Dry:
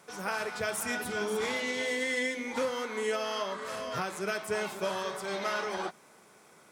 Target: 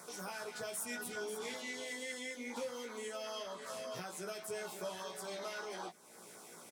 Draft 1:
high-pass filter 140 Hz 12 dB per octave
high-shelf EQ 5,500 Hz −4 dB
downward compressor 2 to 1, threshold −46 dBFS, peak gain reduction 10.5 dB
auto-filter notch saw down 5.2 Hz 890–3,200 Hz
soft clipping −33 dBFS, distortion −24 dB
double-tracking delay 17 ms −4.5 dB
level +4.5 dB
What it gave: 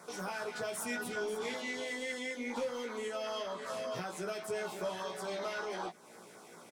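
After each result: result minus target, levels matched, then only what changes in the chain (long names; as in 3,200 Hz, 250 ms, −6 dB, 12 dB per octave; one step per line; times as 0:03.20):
downward compressor: peak gain reduction −6 dB; 8,000 Hz band −5.5 dB
change: downward compressor 2 to 1, threshold −57.5 dBFS, peak gain reduction 16.5 dB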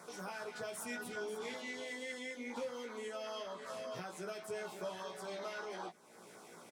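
8,000 Hz band −5.5 dB
change: high-shelf EQ 5,500 Hz +7 dB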